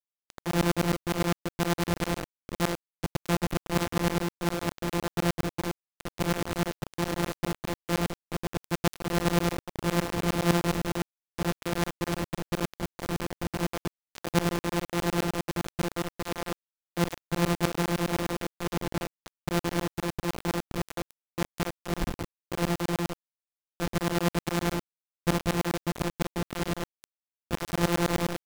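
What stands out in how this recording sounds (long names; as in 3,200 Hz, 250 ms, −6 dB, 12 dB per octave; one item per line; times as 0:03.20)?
a buzz of ramps at a fixed pitch in blocks of 256 samples
tremolo saw up 9.8 Hz, depth 95%
a quantiser's noise floor 6 bits, dither none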